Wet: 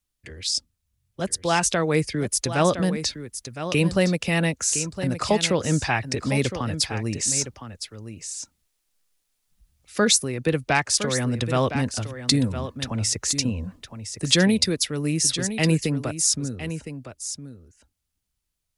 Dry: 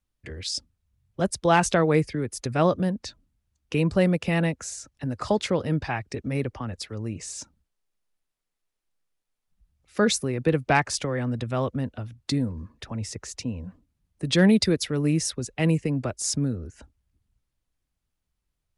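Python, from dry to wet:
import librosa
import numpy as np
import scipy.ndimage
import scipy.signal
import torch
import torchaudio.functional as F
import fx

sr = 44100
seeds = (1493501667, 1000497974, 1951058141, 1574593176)

y = fx.high_shelf(x, sr, hz=2800.0, db=11.5)
y = fx.rider(y, sr, range_db=4, speed_s=0.5)
y = y + 10.0 ** (-10.5 / 20.0) * np.pad(y, (int(1012 * sr / 1000.0), 0))[:len(y)]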